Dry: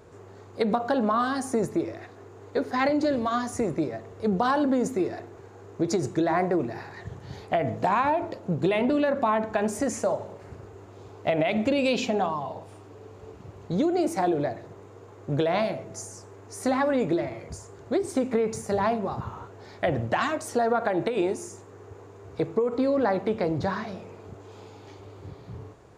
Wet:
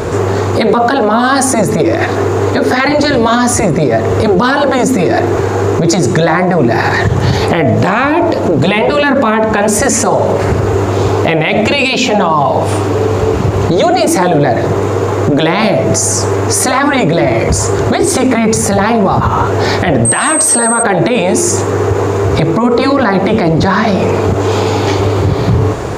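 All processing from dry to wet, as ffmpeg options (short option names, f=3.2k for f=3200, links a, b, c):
-filter_complex "[0:a]asettb=1/sr,asplit=3[a][b][c];[a]atrim=end=20.054[d];[b]atrim=start=20.05:end=20.83,asetpts=PTS-STARTPTS,afade=t=in:d=0.004:c=qsin,afade=t=out:st=0.776:d=0.004:c=qsin,highpass=f=200:p=1,aeval=exprs='val(0)+0.0316*sin(2*PI*8300*n/s)':c=same[e];[c]atrim=start=20.826[f];[d][e]acrossfade=d=0.004:c1=hsin:c2=qsin[g];[g][f]acrossfade=d=0.004:c1=qsin:c2=hsin,afftfilt=real='re*lt(hypot(re,im),0.398)':imag='im*lt(hypot(re,im),0.398)':win_size=1024:overlap=0.75,acompressor=threshold=-39dB:ratio=3,alimiter=level_in=35.5dB:limit=-1dB:release=50:level=0:latency=1,volume=-1dB"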